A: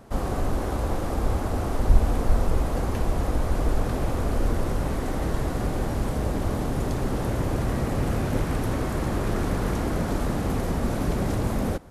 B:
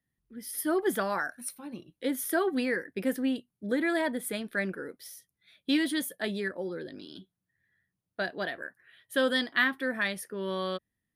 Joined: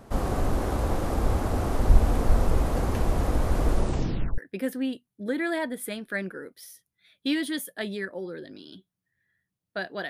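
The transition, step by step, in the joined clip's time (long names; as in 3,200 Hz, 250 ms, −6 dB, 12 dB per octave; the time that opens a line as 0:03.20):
A
0:03.70: tape stop 0.68 s
0:04.38: continue with B from 0:02.81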